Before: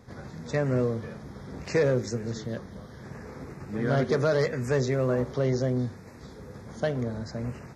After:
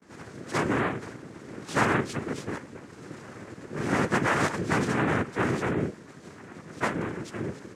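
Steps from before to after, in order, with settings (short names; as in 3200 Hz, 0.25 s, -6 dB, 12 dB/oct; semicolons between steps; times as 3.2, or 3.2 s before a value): vibrato 0.49 Hz 79 cents; harmoniser +3 st -10 dB; noise vocoder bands 3; gain -1 dB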